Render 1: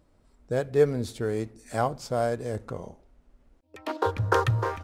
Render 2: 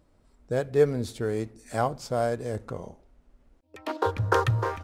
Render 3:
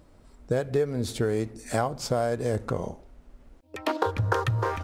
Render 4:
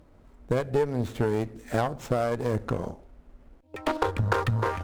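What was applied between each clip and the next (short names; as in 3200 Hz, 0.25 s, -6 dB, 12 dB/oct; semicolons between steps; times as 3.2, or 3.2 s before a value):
nothing audible
compressor 8:1, threshold -30 dBFS, peak gain reduction 15 dB; gain +8 dB
median filter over 9 samples; added harmonics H 6 -19 dB, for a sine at -11 dBFS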